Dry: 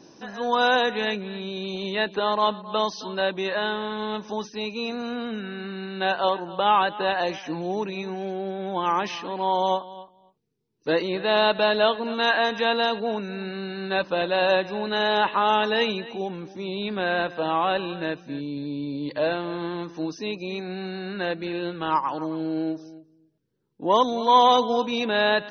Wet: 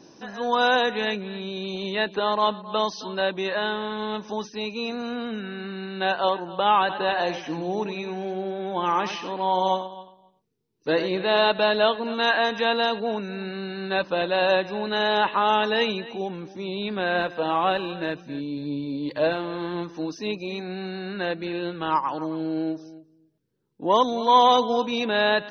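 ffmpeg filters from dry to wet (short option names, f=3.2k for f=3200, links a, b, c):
-filter_complex "[0:a]asettb=1/sr,asplit=3[a][b][c];[a]atrim=end=6.804[d];[b]atrim=start=6.8:end=11.51,asetpts=PTS-STARTPTS,afade=t=in:d=0.004:c=qsin,afade=t=out:st=4.706:d=0.004:c=qsin,aecho=1:1:91:0.316,atrim=end_sample=207711[e];[c]atrim=start=11.506[f];[d][e]acrossfade=d=0.004:c1=hsin:c2=qsin[g];[g][f]acrossfade=d=0.004:c1=qsin:c2=hsin,asettb=1/sr,asplit=3[h][i][j];[h]atrim=end=17.154[k];[i]atrim=start=17.15:end=20.63,asetpts=PTS-STARTPTS,afade=t=in:d=0.004:c=qsin,afade=t=out:st=3.476:d=0.004:c=qsin,aphaser=in_gain=1:out_gain=1:delay=4.2:decay=0.23:speed=1.9:type=sinusoidal[l];[j]atrim=start=20.626[m];[k][l]acrossfade=d=0.004:c1=hsin:c2=qsin[n];[n][m]acrossfade=d=0.004:c1=qsin:c2=hsin"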